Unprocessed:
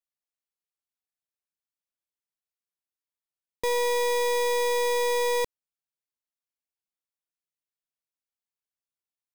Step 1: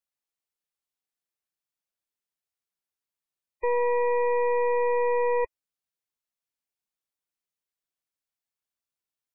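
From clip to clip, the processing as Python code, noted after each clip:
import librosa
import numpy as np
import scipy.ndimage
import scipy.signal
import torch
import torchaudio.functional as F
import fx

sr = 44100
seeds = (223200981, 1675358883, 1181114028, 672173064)

y = fx.spec_gate(x, sr, threshold_db=-15, keep='strong')
y = y * 10.0 ** (1.5 / 20.0)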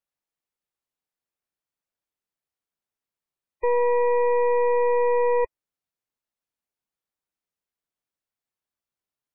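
y = fx.high_shelf(x, sr, hz=2100.0, db=-8.0)
y = y * 10.0 ** (4.0 / 20.0)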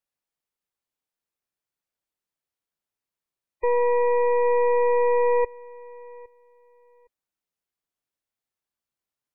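y = fx.echo_feedback(x, sr, ms=812, feedback_pct=23, wet_db=-23.5)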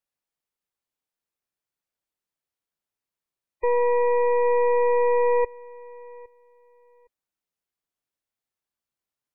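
y = x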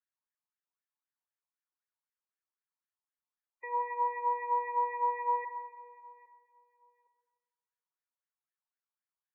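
y = fx.filter_lfo_bandpass(x, sr, shape='sine', hz=3.9, low_hz=900.0, high_hz=1800.0, q=5.0)
y = fx.room_shoebox(y, sr, seeds[0], volume_m3=2100.0, walls='mixed', distance_m=0.96)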